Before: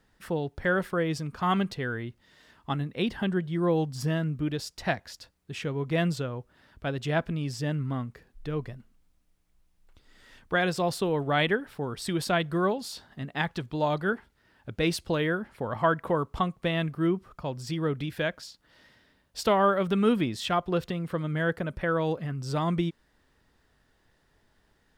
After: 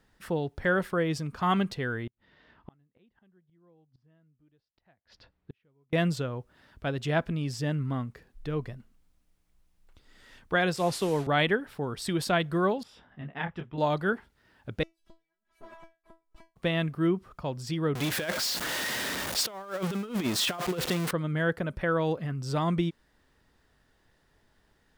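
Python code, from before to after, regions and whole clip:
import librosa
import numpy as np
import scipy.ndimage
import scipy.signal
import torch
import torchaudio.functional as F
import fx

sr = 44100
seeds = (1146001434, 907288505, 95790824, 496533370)

y = fx.chain(x, sr, fx.gate_flip(shuts_db=-30.0, range_db=-36),
    fx.air_absorb(metres=290.0), at=(2.07, 5.93))
y = fx.chain(y, sr, fx.delta_mod(bps=64000, step_db=-35.0),
    fx.band_widen(depth_pct=70), at=(10.76, 11.27))
y = fx.chain(y, sr, fx.savgol(points=25),
    fx.detune_double(cents=27), at=(12.83, 13.78))
y = fx.chain(y, sr, fx.lower_of_two(delay_ms=4.8),
    fx.gate_flip(shuts_db=-21.0, range_db=-41),
    fx.comb_fb(f0_hz=330.0, decay_s=0.22, harmonics='all', damping=0.0, mix_pct=100), at=(14.83, 16.56))
y = fx.chain(y, sr, fx.zero_step(step_db=-29.0),
    fx.highpass(hz=280.0, slope=6),
    fx.over_compress(threshold_db=-29.0, ratio=-0.5), at=(17.95, 21.11))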